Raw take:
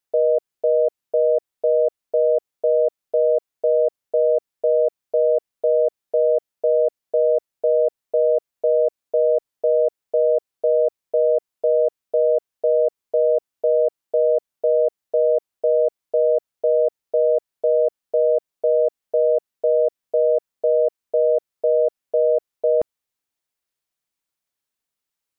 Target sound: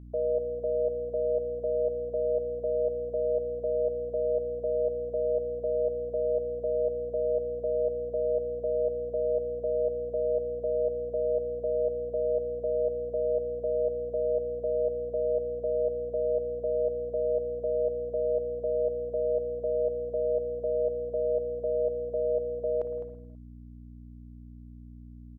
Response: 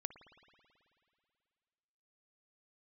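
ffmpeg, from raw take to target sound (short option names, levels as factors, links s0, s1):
-filter_complex "[0:a]aecho=1:1:208:0.282,aeval=exprs='val(0)+0.0224*(sin(2*PI*60*n/s)+sin(2*PI*2*60*n/s)/2+sin(2*PI*3*60*n/s)/3+sin(2*PI*4*60*n/s)/4+sin(2*PI*5*60*n/s)/5)':c=same[s0];[1:a]atrim=start_sample=2205,afade=t=out:st=0.39:d=0.01,atrim=end_sample=17640[s1];[s0][s1]afir=irnorm=-1:irlink=0,volume=0.398"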